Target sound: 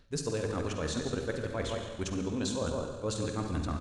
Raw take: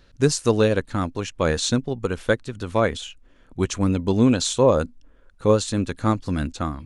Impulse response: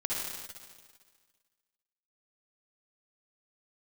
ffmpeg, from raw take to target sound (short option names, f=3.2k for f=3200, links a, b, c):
-filter_complex "[0:a]asplit=2[a][b];[b]adelay=25,volume=-13.5dB[c];[a][c]amix=inputs=2:normalize=0,asplit=2[d][e];[e]adelay=303.2,volume=-10dB,highshelf=f=4k:g=-6.82[f];[d][f]amix=inputs=2:normalize=0,areverse,acompressor=threshold=-25dB:ratio=12,areverse,bandreject=f=63.75:t=h:w=4,bandreject=f=127.5:t=h:w=4,bandreject=f=191.25:t=h:w=4,asplit=2[g][h];[1:a]atrim=start_sample=2205,asetrate=27342,aresample=44100,lowshelf=f=230:g=3[i];[h][i]afir=irnorm=-1:irlink=0,volume=-11dB[j];[g][j]amix=inputs=2:normalize=0,atempo=1.8,volume=-7dB"